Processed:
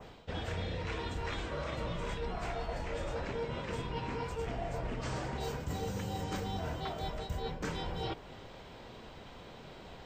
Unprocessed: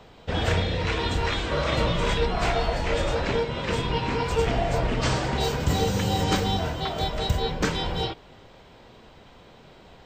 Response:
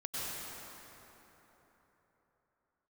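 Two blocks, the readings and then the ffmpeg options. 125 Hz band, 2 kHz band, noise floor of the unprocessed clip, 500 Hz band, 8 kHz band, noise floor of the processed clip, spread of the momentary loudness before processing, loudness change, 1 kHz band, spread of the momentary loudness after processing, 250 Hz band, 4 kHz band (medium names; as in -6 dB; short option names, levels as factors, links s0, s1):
-12.0 dB, -13.0 dB, -51 dBFS, -12.0 dB, -14.0 dB, -51 dBFS, 4 LU, -12.5 dB, -12.0 dB, 13 LU, -12.0 dB, -15.5 dB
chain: -af "adynamicequalizer=threshold=0.00562:dfrequency=3800:dqfactor=1.2:tfrequency=3800:tqfactor=1.2:attack=5:release=100:ratio=0.375:range=2.5:mode=cutabove:tftype=bell,areverse,acompressor=threshold=0.0178:ratio=6,areverse"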